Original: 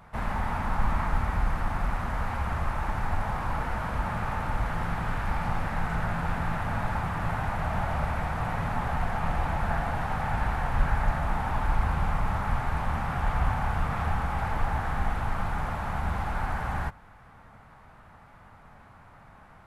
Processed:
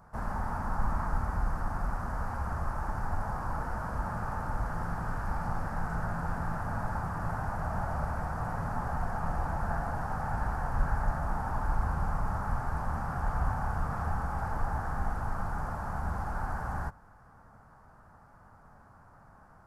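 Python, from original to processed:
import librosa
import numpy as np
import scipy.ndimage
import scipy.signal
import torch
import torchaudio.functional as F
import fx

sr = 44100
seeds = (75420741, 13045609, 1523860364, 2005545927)

y = fx.band_shelf(x, sr, hz=2800.0, db=-14.0, octaves=1.2)
y = y * librosa.db_to_amplitude(-4.0)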